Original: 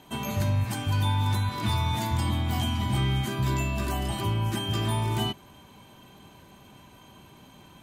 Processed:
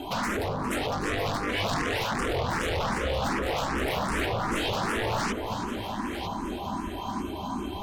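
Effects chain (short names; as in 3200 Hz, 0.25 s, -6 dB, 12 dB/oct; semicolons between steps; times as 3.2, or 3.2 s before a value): LPF 1700 Hz 6 dB/oct; in parallel at +2 dB: compressor, threshold -37 dBFS, peak gain reduction 14 dB; on the sum: soft clip -26 dBFS, distortion -11 dB; fixed phaser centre 500 Hz, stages 6; sine folder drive 14 dB, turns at -23 dBFS; on a send: echo with dull and thin repeats by turns 0.475 s, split 1100 Hz, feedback 63%, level -5 dB; on the sum: endless phaser +2.6 Hz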